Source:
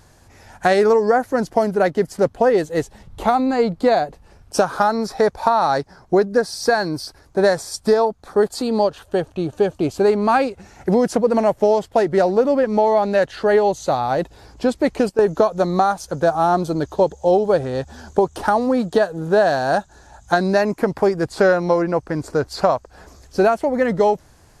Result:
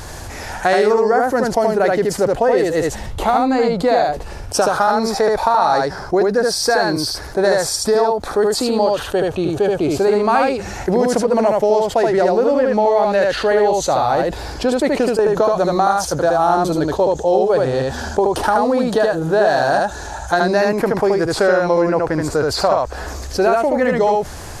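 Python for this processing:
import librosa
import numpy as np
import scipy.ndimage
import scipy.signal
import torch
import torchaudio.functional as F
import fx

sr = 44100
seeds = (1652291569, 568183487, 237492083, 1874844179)

y = fx.peak_eq(x, sr, hz=180.0, db=-5.0, octaves=1.3)
y = y + 10.0 ** (-3.5 / 20.0) * np.pad(y, (int(76 * sr / 1000.0), 0))[:len(y)]
y = fx.env_flatten(y, sr, amount_pct=50)
y = F.gain(torch.from_numpy(y), -1.0).numpy()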